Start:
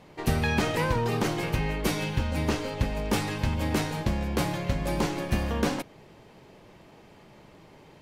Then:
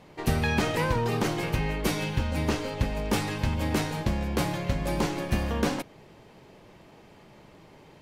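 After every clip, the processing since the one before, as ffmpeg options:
-af anull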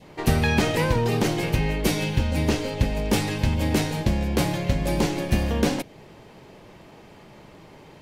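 -af "adynamicequalizer=threshold=0.00398:dfrequency=1200:dqfactor=1.5:tfrequency=1200:tqfactor=1.5:attack=5:release=100:ratio=0.375:range=3.5:mode=cutabove:tftype=bell,volume=1.78"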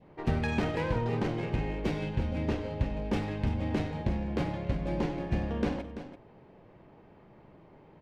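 -af "adynamicsmooth=sensitivity=1:basefreq=1900,aecho=1:1:48|68|95|337:0.15|0.119|0.168|0.266,volume=0.398"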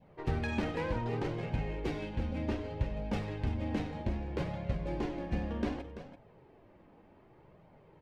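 -af "flanger=delay=1.2:depth=2.9:regen=-40:speed=0.65:shape=triangular"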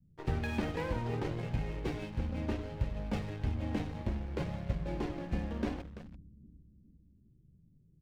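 -filter_complex "[0:a]acrossover=split=220[s0][s1];[s0]aecho=1:1:405|810|1215|1620|2025:0.224|0.116|0.0605|0.0315|0.0164[s2];[s1]aeval=exprs='sgn(val(0))*max(abs(val(0))-0.00335,0)':c=same[s3];[s2][s3]amix=inputs=2:normalize=0"

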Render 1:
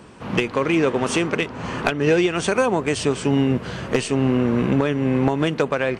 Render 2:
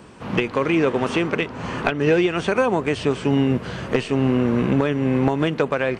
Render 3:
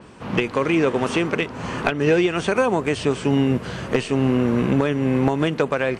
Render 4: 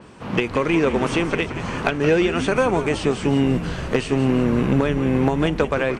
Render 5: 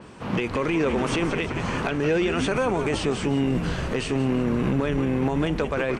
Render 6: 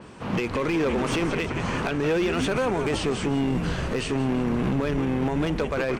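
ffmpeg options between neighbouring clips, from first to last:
-filter_complex "[0:a]acrossover=split=4000[s0][s1];[s1]acompressor=threshold=0.00562:ratio=4:attack=1:release=60[s2];[s0][s2]amix=inputs=2:normalize=0"
-af "adynamicequalizer=threshold=0.00794:dfrequency=5700:dqfactor=0.7:tfrequency=5700:tqfactor=0.7:attack=5:release=100:ratio=0.375:range=3:mode=boostabove:tftype=highshelf"
-filter_complex "[0:a]asplit=8[s0][s1][s2][s3][s4][s5][s6][s7];[s1]adelay=174,afreqshift=-100,volume=0.282[s8];[s2]adelay=348,afreqshift=-200,volume=0.166[s9];[s3]adelay=522,afreqshift=-300,volume=0.0977[s10];[s4]adelay=696,afreqshift=-400,volume=0.0582[s11];[s5]adelay=870,afreqshift=-500,volume=0.0343[s12];[s6]adelay=1044,afreqshift=-600,volume=0.0202[s13];[s7]adelay=1218,afreqshift=-700,volume=0.0119[s14];[s0][s8][s9][s10][s11][s12][s13][s14]amix=inputs=8:normalize=0"
-af "alimiter=limit=0.178:level=0:latency=1:release=19"
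-af "volume=8.91,asoftclip=hard,volume=0.112"

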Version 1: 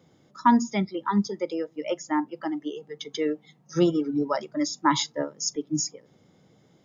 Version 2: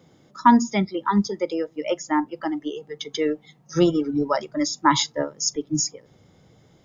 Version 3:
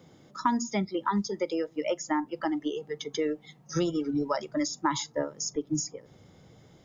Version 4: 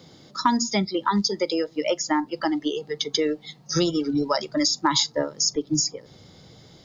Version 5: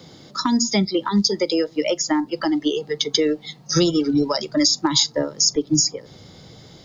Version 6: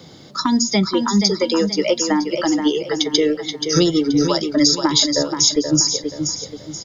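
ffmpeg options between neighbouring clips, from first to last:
-af "asubboost=boost=4.5:cutoff=88,volume=1.68"
-filter_complex "[0:a]acrossover=split=1900|6100[s0][s1][s2];[s0]acompressor=threshold=0.0501:ratio=4[s3];[s1]acompressor=threshold=0.00708:ratio=4[s4];[s2]acompressor=threshold=0.0158:ratio=4[s5];[s3][s4][s5]amix=inputs=3:normalize=0"
-af "equalizer=f=4400:w=1.9:g=13.5,volume=1.78"
-filter_complex "[0:a]acrossover=split=480|3000[s0][s1][s2];[s1]acompressor=threshold=0.0316:ratio=6[s3];[s0][s3][s2]amix=inputs=3:normalize=0,volume=1.78"
-af "aecho=1:1:479|958|1437|1916:0.447|0.161|0.0579|0.0208,volume=1.26"

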